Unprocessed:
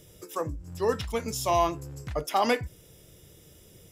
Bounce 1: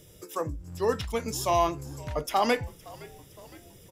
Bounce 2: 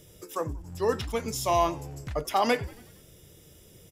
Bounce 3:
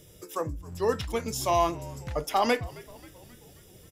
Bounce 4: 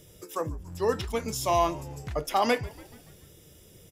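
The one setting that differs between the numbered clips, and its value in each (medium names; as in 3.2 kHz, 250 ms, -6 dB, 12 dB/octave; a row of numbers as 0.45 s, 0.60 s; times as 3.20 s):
frequency-shifting echo, time: 514 ms, 92 ms, 267 ms, 143 ms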